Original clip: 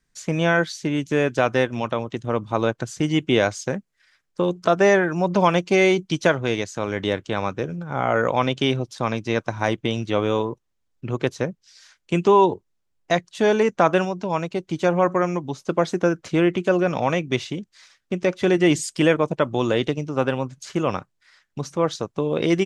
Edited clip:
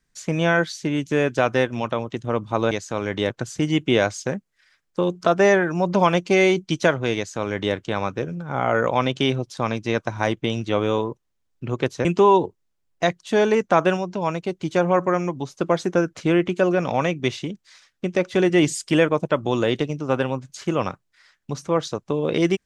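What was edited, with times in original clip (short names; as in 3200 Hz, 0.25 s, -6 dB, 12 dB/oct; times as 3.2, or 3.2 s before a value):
6.57–7.16 copy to 2.71
11.46–12.13 cut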